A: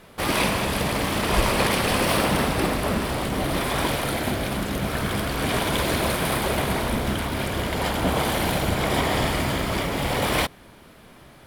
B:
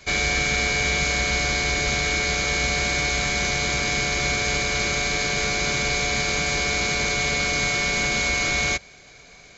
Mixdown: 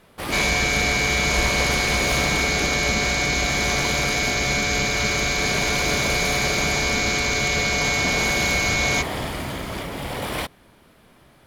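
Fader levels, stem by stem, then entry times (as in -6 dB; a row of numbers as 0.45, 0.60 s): -5.0, +1.0 dB; 0.00, 0.25 s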